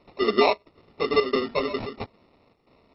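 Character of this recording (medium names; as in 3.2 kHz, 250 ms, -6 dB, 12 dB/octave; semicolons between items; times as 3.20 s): aliases and images of a low sample rate 1.6 kHz, jitter 0%; chopped level 1.5 Hz, depth 65%, duty 80%; a quantiser's noise floor 12-bit, dither none; MP2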